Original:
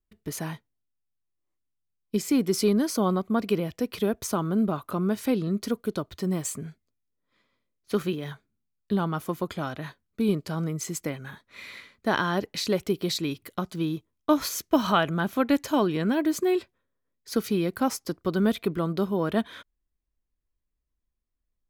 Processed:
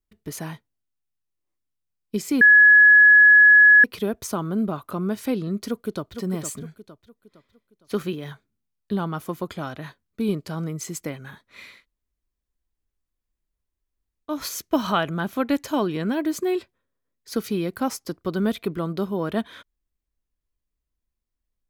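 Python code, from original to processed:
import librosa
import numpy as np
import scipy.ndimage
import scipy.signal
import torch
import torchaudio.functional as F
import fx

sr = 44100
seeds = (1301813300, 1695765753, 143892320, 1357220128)

y = fx.echo_throw(x, sr, start_s=5.68, length_s=0.46, ms=460, feedback_pct=40, wet_db=-8.0)
y = fx.edit(y, sr, fx.bleep(start_s=2.41, length_s=1.43, hz=1690.0, db=-8.5),
    fx.room_tone_fill(start_s=11.74, length_s=2.6, crossfade_s=0.24), tone=tone)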